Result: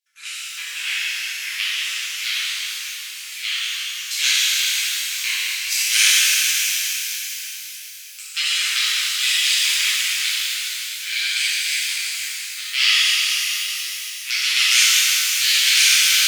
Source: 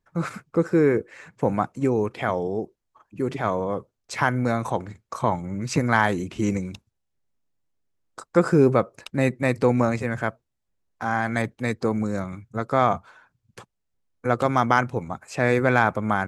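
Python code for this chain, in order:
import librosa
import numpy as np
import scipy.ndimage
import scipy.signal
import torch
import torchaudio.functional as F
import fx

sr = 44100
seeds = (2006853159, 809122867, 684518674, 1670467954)

y = fx.cheby_harmonics(x, sr, harmonics=(8,), levels_db=(-11,), full_scale_db=-3.5)
y = scipy.signal.sosfilt(scipy.signal.cheby2(4, 60, 780.0, 'highpass', fs=sr, output='sos'), y)
y = fx.rev_shimmer(y, sr, seeds[0], rt60_s=3.9, semitones=12, shimmer_db=-8, drr_db=-12.0)
y = y * librosa.db_to_amplitude(4.0)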